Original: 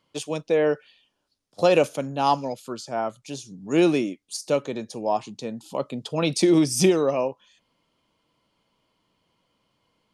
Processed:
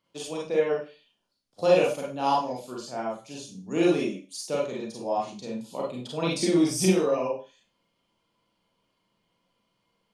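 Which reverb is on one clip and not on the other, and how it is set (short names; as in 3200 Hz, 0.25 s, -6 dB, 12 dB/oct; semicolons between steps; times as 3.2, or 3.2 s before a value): Schroeder reverb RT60 0.33 s, combs from 32 ms, DRR -4 dB; gain -8.5 dB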